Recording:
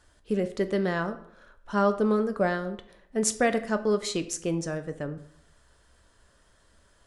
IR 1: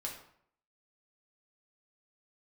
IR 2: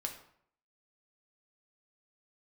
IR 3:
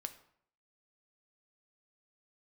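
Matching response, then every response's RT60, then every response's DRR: 3; 0.65, 0.65, 0.65 s; -1.5, 2.5, 8.5 dB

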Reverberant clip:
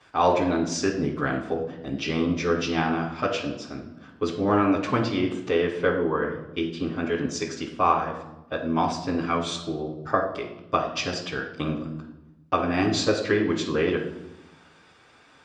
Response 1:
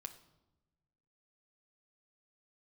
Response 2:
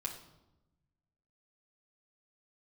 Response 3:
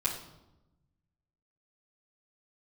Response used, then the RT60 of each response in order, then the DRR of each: 3; 1.0, 0.95, 0.95 s; 4.5, -3.0, -9.5 dB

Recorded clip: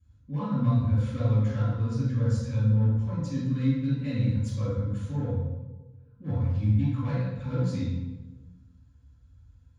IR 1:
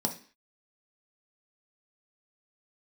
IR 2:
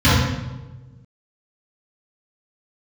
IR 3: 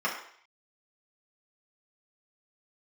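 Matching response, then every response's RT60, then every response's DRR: 2; 0.40, 1.2, 0.60 s; 3.0, -14.0, -5.5 dB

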